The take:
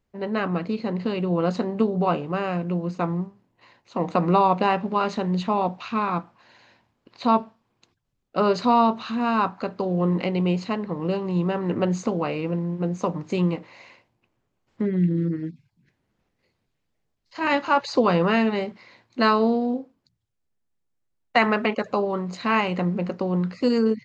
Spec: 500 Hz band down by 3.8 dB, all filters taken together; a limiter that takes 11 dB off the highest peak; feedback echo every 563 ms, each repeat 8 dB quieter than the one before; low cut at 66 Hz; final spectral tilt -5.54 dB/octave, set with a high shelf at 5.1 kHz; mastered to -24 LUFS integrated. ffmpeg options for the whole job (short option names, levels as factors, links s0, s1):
-af "highpass=66,equalizer=f=500:t=o:g=-5,highshelf=f=5100:g=6.5,alimiter=limit=0.158:level=0:latency=1,aecho=1:1:563|1126|1689|2252|2815:0.398|0.159|0.0637|0.0255|0.0102,volume=1.5"